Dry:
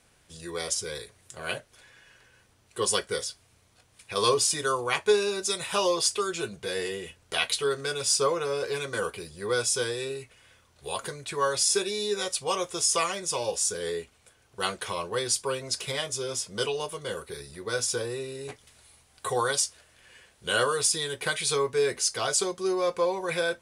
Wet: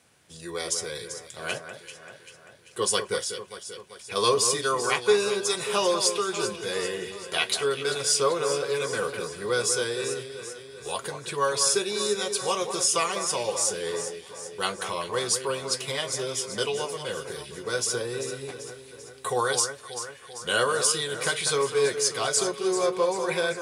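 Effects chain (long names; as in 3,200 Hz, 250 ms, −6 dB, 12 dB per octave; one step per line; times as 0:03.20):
high-pass filter 100 Hz
delay that swaps between a low-pass and a high-pass 195 ms, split 2,100 Hz, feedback 74%, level −8 dB
level +1 dB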